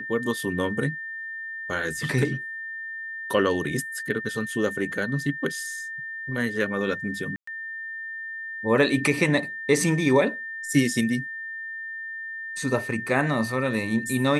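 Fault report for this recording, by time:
whistle 1,800 Hz −32 dBFS
0:07.36–0:07.47: drop-out 114 ms

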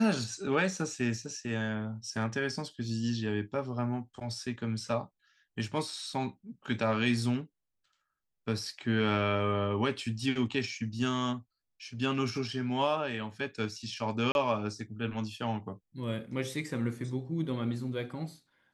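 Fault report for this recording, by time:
0:14.32–0:14.35: drop-out 31 ms

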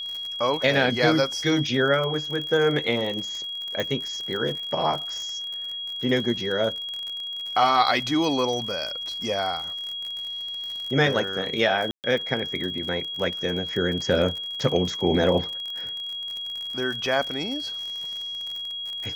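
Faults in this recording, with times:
surface crackle 49 per second −30 dBFS
whistle 3,300 Hz −30 dBFS
0:03.80: click −15 dBFS
0:11.91–0:12.04: drop-out 128 ms

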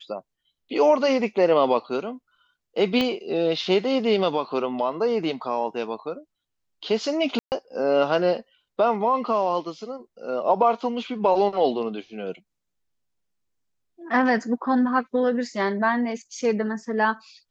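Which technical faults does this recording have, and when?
0:03.01: click −12 dBFS
0:07.39–0:07.52: drop-out 129 ms

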